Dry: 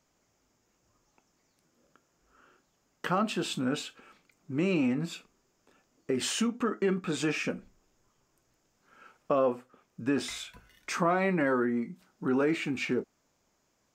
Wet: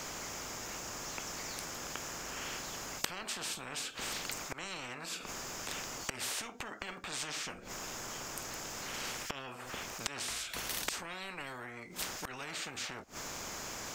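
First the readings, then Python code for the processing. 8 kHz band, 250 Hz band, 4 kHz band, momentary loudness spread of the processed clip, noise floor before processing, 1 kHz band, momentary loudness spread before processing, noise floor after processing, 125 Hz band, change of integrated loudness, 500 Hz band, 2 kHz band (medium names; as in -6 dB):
+5.0 dB, -18.5 dB, +1.0 dB, 5 LU, -74 dBFS, -6.5 dB, 13 LU, -49 dBFS, -12.5 dB, -9.0 dB, -15.0 dB, -3.5 dB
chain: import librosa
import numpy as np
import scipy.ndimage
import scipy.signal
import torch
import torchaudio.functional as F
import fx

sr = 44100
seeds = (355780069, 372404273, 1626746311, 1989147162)

y = fx.transient(x, sr, attack_db=-4, sustain_db=0)
y = fx.gate_flip(y, sr, shuts_db=-33.0, range_db=-26)
y = fx.spectral_comp(y, sr, ratio=10.0)
y = y * 10.0 ** (17.5 / 20.0)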